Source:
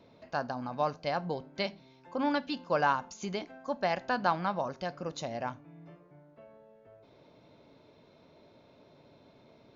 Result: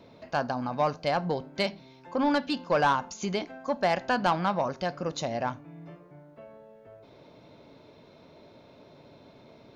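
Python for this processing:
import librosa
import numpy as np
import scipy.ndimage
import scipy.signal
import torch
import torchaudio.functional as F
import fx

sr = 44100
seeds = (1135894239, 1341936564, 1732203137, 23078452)

y = 10.0 ** (-21.5 / 20.0) * np.tanh(x / 10.0 ** (-21.5 / 20.0))
y = y * 10.0 ** (6.0 / 20.0)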